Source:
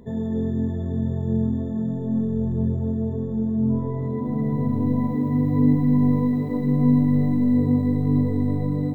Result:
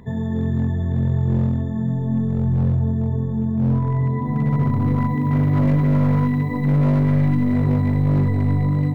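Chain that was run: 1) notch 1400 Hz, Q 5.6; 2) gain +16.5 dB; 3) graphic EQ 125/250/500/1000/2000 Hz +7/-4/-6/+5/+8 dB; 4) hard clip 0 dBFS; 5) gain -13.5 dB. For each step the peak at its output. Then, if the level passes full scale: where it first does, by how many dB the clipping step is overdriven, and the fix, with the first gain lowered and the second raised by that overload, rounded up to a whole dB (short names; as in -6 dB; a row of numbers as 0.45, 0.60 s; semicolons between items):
-7.5, +9.0, +8.5, 0.0, -13.5 dBFS; step 2, 8.5 dB; step 2 +7.5 dB, step 5 -4.5 dB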